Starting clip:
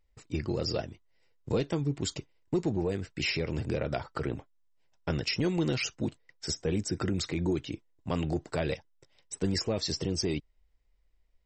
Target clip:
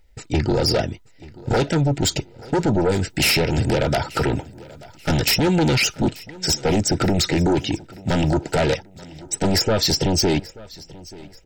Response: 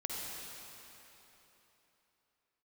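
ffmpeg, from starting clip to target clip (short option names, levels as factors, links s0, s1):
-filter_complex "[0:a]asettb=1/sr,asplit=3[s0][s1][s2];[s0]atrim=end=2.924[s3];[s1]atrim=start=2.92:end=5.38,asetpts=PTS-STARTPTS,afade=t=in:d=0.004:c=qsin,afade=t=out:st=2.456:d=0.004:c=qsin,highshelf=f=5700:g=9.5[s4];[s2]atrim=start=5.376[s5];[s3][s4]acrossfade=d=0.004:c1=hsin:c2=qsin[s6];[s6][s5]acrossfade=d=0.004:c1=qsin:c2=hsin,aeval=exprs='0.2*sin(PI/2*3.98*val(0)/0.2)':c=same,asuperstop=centerf=1100:order=20:qfactor=4.9,aecho=1:1:884|1768|2652:0.0891|0.0339|0.0129"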